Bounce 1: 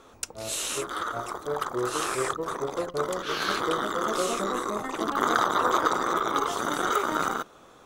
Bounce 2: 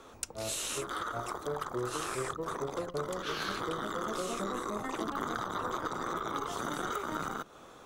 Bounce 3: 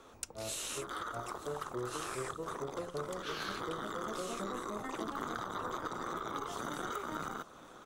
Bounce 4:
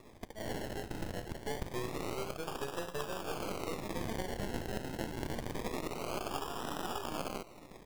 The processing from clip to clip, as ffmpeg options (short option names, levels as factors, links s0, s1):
-filter_complex "[0:a]acrossover=split=190[s0][s1];[s1]acompressor=threshold=0.0224:ratio=6[s2];[s0][s2]amix=inputs=2:normalize=0"
-af "aecho=1:1:912|1824|2736|3648:0.112|0.0606|0.0327|0.0177,volume=0.631"
-af "aeval=exprs='if(lt(val(0),0),0.251*val(0),val(0))':c=same,acrusher=samples=29:mix=1:aa=0.000001:lfo=1:lforange=17.4:lforate=0.26,volume=1.58"